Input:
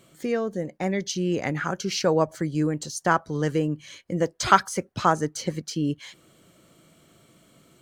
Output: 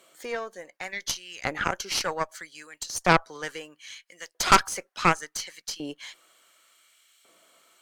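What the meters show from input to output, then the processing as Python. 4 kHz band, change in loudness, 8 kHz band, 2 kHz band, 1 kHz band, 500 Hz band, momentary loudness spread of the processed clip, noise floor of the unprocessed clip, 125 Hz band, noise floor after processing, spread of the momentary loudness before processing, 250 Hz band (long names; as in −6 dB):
+2.5 dB, −1.5 dB, +2.0 dB, +2.5 dB, −1.0 dB, −7.0 dB, 22 LU, −59 dBFS, −8.5 dB, −72 dBFS, 10 LU, −9.5 dB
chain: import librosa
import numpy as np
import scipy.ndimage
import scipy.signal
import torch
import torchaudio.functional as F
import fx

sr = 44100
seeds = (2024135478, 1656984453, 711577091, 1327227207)

y = fx.filter_lfo_highpass(x, sr, shape='saw_up', hz=0.69, low_hz=540.0, high_hz=2600.0, q=0.9)
y = fx.cheby_harmonics(y, sr, harmonics=(5, 8), levels_db=(-19, -11), full_scale_db=-0.5)
y = F.gain(torch.from_numpy(y), -3.0).numpy()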